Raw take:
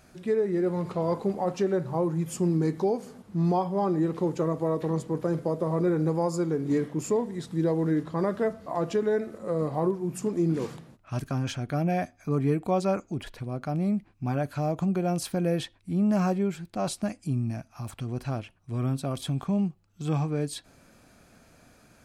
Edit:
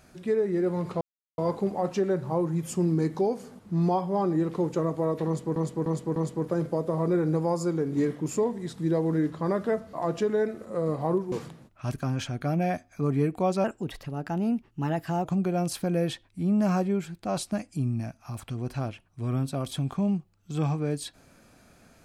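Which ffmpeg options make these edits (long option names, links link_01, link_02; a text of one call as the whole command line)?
ffmpeg -i in.wav -filter_complex "[0:a]asplit=8[link_01][link_02][link_03][link_04][link_05][link_06][link_07][link_08];[link_01]atrim=end=1.01,asetpts=PTS-STARTPTS,afade=type=out:start_time=1.006:duration=0.004:curve=hsin,apad=pad_dur=0.37[link_09];[link_02]atrim=start=1.01:end=5.192,asetpts=PTS-STARTPTS,afade=type=in:duration=0.004:curve=hsin[link_10];[link_03]atrim=start=4.888:end=5.192[link_11];[link_04]atrim=start=4.888:end=5.192[link_12];[link_05]atrim=start=4.888:end=10.052[link_13];[link_06]atrim=start=10.598:end=12.924[link_14];[link_07]atrim=start=12.92:end=14.75,asetpts=PTS-STARTPTS,asetrate=50274,aresample=44100,atrim=end_sample=70792,asetpts=PTS-STARTPTS[link_15];[link_08]atrim=start=14.746[link_16];[link_09][link_10]concat=n=2:v=0:a=1[link_17];[link_17][link_11]acrossfade=duration=0.004:curve1=hsin:curve2=hsin[link_18];[link_18][link_12]acrossfade=duration=0.004:curve1=hsin:curve2=hsin[link_19];[link_19][link_13]acrossfade=duration=0.004:curve1=hsin:curve2=hsin[link_20];[link_20][link_14]acrossfade=duration=0.004:curve1=hsin:curve2=hsin[link_21];[link_21][link_15]acrossfade=duration=0.004:curve1=hsin:curve2=hsin[link_22];[link_22][link_16]acrossfade=duration=0.004:curve1=hsin:curve2=hsin" out.wav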